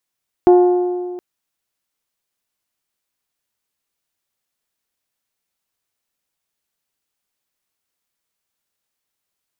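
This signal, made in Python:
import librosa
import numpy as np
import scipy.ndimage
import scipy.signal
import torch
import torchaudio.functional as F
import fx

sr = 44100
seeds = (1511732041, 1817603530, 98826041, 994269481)

y = fx.strike_metal(sr, length_s=0.72, level_db=-5, body='bell', hz=358.0, decay_s=1.95, tilt_db=9.0, modes=6)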